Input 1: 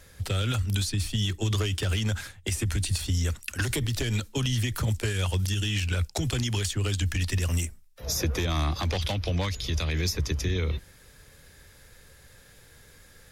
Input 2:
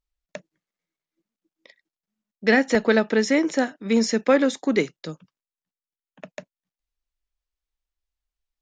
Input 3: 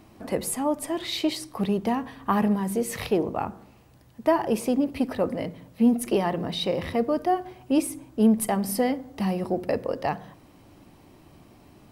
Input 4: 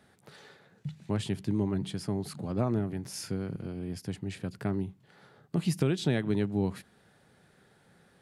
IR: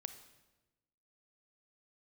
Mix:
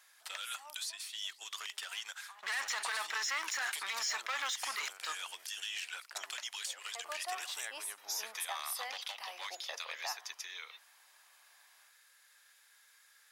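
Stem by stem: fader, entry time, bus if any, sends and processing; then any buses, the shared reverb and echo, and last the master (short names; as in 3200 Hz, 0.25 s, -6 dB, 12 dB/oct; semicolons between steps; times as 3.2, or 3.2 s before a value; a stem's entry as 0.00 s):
-8.0 dB, 0.00 s, no bus, no send, dry
-4.0 dB, 0.00 s, bus A, no send, sample leveller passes 3; bell 530 Hz -7.5 dB 1.2 oct; compressor, threshold -18 dBFS, peak gain reduction 7.5 dB
-13.5 dB, 0.00 s, bus A, no send, auto duck -21 dB, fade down 1.25 s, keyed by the second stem
-7.5 dB, 1.50 s, no bus, no send, sample leveller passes 1
bus A: 0.0 dB, AGC gain up to 6 dB; limiter -18 dBFS, peak gain reduction 9.5 dB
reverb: off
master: HPF 920 Hz 24 dB/oct; limiter -26.5 dBFS, peak gain reduction 10.5 dB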